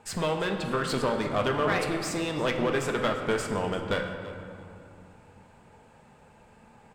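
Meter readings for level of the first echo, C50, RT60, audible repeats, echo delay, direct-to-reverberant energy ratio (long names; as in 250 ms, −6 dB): −17.5 dB, 5.5 dB, 2.6 s, 1, 336 ms, 3.5 dB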